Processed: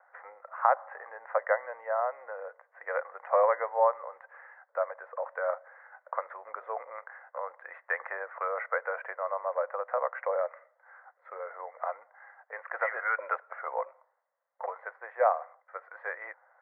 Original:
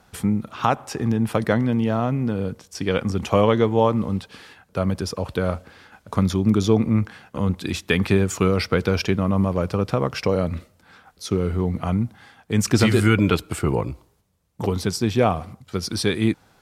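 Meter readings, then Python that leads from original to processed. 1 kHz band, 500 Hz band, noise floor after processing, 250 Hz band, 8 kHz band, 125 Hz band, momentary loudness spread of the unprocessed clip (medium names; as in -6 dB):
-3.0 dB, -8.5 dB, -73 dBFS, under -40 dB, under -40 dB, under -40 dB, 11 LU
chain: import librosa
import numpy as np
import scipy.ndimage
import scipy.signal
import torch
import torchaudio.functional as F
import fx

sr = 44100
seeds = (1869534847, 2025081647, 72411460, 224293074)

y = scipy.signal.sosfilt(scipy.signal.cheby1(5, 1.0, [520.0, 2000.0], 'bandpass', fs=sr, output='sos'), x)
y = F.gain(torch.from_numpy(y), -2.5).numpy()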